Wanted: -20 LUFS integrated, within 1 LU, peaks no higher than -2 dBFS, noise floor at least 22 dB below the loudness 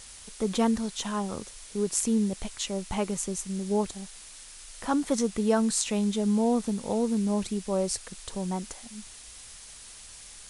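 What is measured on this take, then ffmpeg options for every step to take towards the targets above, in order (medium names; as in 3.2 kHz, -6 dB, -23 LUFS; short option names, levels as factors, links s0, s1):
noise floor -47 dBFS; noise floor target -51 dBFS; loudness -28.5 LUFS; peak level -7.5 dBFS; loudness target -20.0 LUFS
-> -af "afftdn=nr=6:nf=-47"
-af "volume=2.66,alimiter=limit=0.794:level=0:latency=1"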